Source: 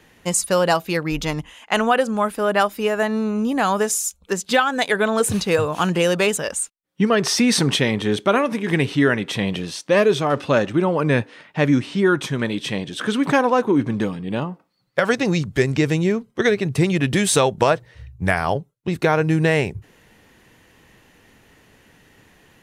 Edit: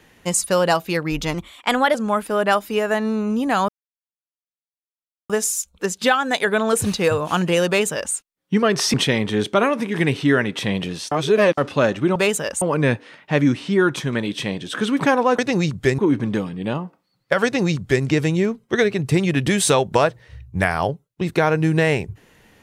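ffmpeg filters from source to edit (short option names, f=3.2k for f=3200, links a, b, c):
-filter_complex "[0:a]asplit=11[a][b][c][d][e][f][g][h][i][j][k];[a]atrim=end=1.344[l];[b]atrim=start=1.34:end=2.03,asetpts=PTS-STARTPTS,asetrate=50274,aresample=44100,atrim=end_sample=26692,asetpts=PTS-STARTPTS[m];[c]atrim=start=2.026:end=3.77,asetpts=PTS-STARTPTS,afade=t=out:st=1.74:d=0.004:c=hsin,apad=pad_dur=1.61[n];[d]atrim=start=3.77:end=7.412,asetpts=PTS-STARTPTS,afade=t=in:d=0.004:c=hsin[o];[e]atrim=start=7.658:end=9.842[p];[f]atrim=start=9.838:end=10.302,asetpts=PTS-STARTPTS,areverse[q];[g]atrim=start=10.298:end=10.882[r];[h]atrim=start=6.148:end=6.612[s];[i]atrim=start=10.878:end=13.652[t];[j]atrim=start=15.108:end=15.712[u];[k]atrim=start=13.648[v];[l][m]acrossfade=d=0.004:c1=hsin:c2=hsin[w];[n][o]concat=n=2:v=0:a=1[x];[w][x]acrossfade=d=0.004:c1=hsin:c2=hsin[y];[y][p]acrossfade=d=0.004:c1=hsin:c2=hsin[z];[z][q]acrossfade=d=0.004:c1=hsin:c2=hsin[aa];[aa][r]acrossfade=d=0.004:c1=hsin:c2=hsin[ab];[ab][s]acrossfade=d=0.004:c1=hsin:c2=hsin[ac];[ac][t]acrossfade=d=0.004:c1=hsin:c2=hsin[ad];[ad][u]acrossfade=d=0.004:c1=hsin:c2=hsin[ae];[ae][v]acrossfade=d=0.004:c1=hsin:c2=hsin"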